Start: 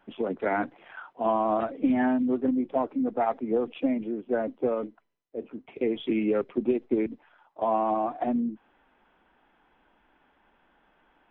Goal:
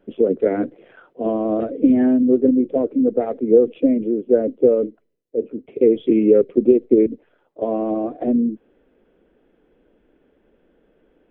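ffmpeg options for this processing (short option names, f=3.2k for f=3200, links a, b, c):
-af "lowshelf=f=650:t=q:w=3:g=10.5,volume=-3dB"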